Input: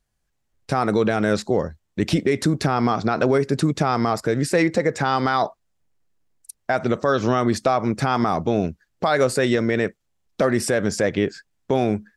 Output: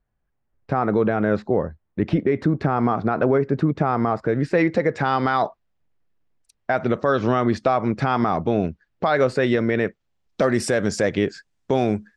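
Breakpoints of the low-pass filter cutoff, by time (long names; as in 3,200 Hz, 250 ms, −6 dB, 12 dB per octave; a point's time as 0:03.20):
0:04.17 1,700 Hz
0:04.77 3,300 Hz
0:09.86 3,300 Hz
0:10.59 8,400 Hz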